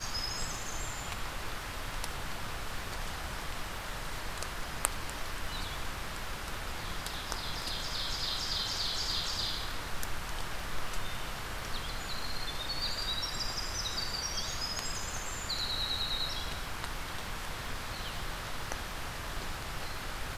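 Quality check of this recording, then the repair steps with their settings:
crackle 32 per s -42 dBFS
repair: de-click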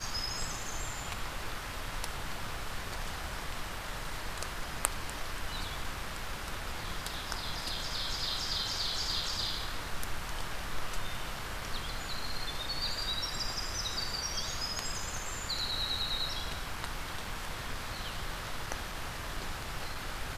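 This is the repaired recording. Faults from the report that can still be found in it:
nothing left

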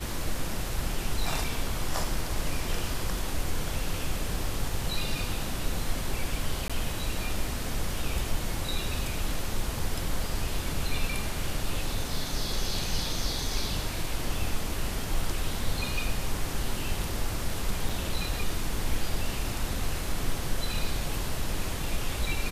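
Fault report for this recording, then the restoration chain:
6.68–6.70 s: dropout 16 ms
17.89 s: dropout 4.5 ms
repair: interpolate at 6.68 s, 16 ms; interpolate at 17.89 s, 4.5 ms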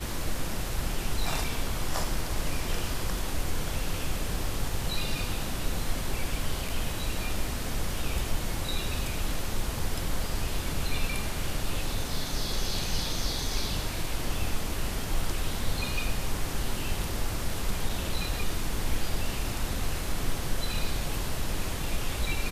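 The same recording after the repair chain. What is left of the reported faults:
nothing left

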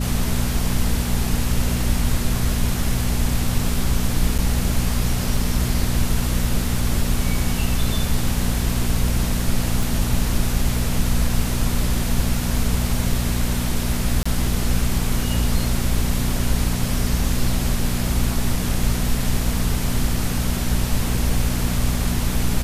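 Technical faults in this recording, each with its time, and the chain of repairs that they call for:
hum 60 Hz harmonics 4 -24 dBFS
4.38–4.39 s: dropout 6.9 ms
9.83 s: pop
14.23–14.26 s: dropout 25 ms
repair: de-click; de-hum 60 Hz, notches 4; interpolate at 4.38 s, 6.9 ms; interpolate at 14.23 s, 25 ms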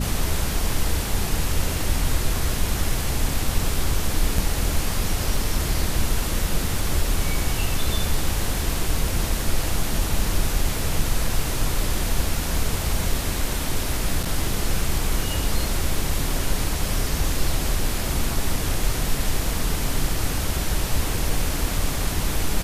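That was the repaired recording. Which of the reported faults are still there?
nothing left

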